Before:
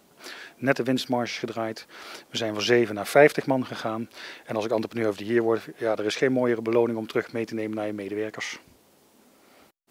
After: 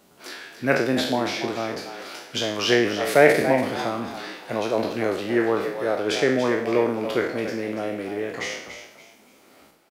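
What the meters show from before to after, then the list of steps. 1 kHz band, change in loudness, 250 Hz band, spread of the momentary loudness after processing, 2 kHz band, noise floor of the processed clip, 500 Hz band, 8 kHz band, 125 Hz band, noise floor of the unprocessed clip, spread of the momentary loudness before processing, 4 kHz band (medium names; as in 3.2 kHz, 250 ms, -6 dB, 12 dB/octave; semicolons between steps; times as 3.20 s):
+3.5 dB, +2.5 dB, +1.5 dB, 14 LU, +3.5 dB, -55 dBFS, +2.0 dB, +4.0 dB, +1.0 dB, -59 dBFS, 14 LU, +4.5 dB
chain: spectral sustain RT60 0.63 s; frequency-shifting echo 285 ms, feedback 31%, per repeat +82 Hz, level -10 dB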